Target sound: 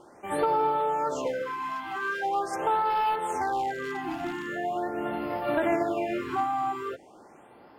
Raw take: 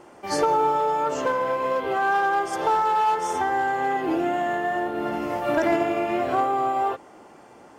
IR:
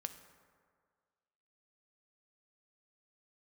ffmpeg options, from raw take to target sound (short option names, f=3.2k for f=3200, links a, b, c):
-filter_complex "[0:a]asettb=1/sr,asplit=3[a][b][c];[a]atrim=end=1.424[d];[b]atrim=start=1.42:end=2.25,asetpts=PTS-STARTPTS,afade=t=in:d=0.004:c=qsin,afade=t=out:st=0.826:d=0.004:c=qsin,lowshelf=f=250:g=-9[e];[c]atrim=start=2.246[f];[d][e]acrossfade=d=0.004:c1=hsin:c2=qsin[g];[g][f]acrossfade=d=0.004:c1=qsin:c2=hsin,asettb=1/sr,asplit=3[h][i][j];[h]atrim=end=2.904[k];[i]atrim=start=2.9:end=4.47,asetpts=PTS-STARTPTS,afade=t=in:d=0.004:c=qsin,afade=t=out:st=1.566:d=0.004:c=qsin,aeval=exprs='0.133*(abs(mod(val(0)/0.133+3,4)-2)-1)':c=same[l];[j]atrim=start=4.466[m];[k][l]acrossfade=d=0.004:c1=hsin:c2=qsin[n];[n][m]acrossfade=d=0.004:c1=qsin:c2=hsin,afftfilt=real='re*(1-between(b*sr/1024,470*pow(7500/470,0.5+0.5*sin(2*PI*0.42*pts/sr))/1.41,470*pow(7500/470,0.5+0.5*sin(2*PI*0.42*pts/sr))*1.41))':imag='im*(1-between(b*sr/1024,470*pow(7500/470,0.5+0.5*sin(2*PI*0.42*pts/sr))/1.41,470*pow(7500/470,0.5+0.5*sin(2*PI*0.42*pts/sr))*1.41))':win_size=1024:overlap=0.75,volume=-4dB"